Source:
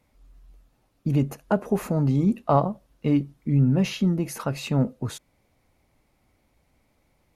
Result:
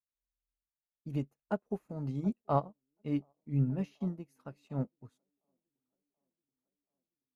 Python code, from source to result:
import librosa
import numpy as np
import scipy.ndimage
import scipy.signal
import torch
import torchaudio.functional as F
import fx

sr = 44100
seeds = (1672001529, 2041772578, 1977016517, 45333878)

y = fx.echo_wet_bandpass(x, sr, ms=730, feedback_pct=68, hz=500.0, wet_db=-16)
y = fx.upward_expand(y, sr, threshold_db=-40.0, expansion=2.5)
y = y * librosa.db_to_amplitude(-8.0)